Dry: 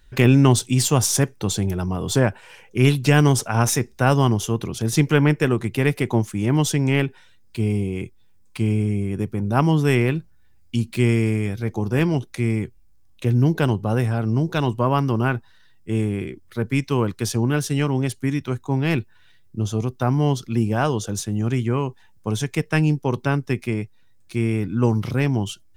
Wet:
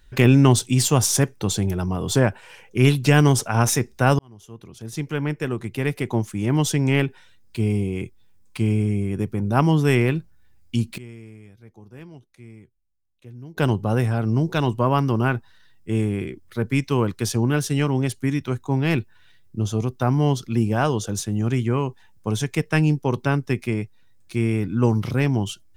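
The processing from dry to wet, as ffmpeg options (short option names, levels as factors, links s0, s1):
-filter_complex "[0:a]asplit=4[s0][s1][s2][s3];[s0]atrim=end=4.19,asetpts=PTS-STARTPTS,afade=t=out:st=4.186:d=0.004:c=hsin[s4];[s1]atrim=start=4.19:end=10.98,asetpts=PTS-STARTPTS,afade=t=in:d=2.72,afade=t=out:st=6.65:d=0.14:c=log:silence=0.0794328[s5];[s2]atrim=start=10.98:end=13.57,asetpts=PTS-STARTPTS,volume=0.0794[s6];[s3]atrim=start=13.57,asetpts=PTS-STARTPTS,afade=t=in:d=0.14:c=log:silence=0.0794328[s7];[s4][s5][s6][s7]concat=n=4:v=0:a=1"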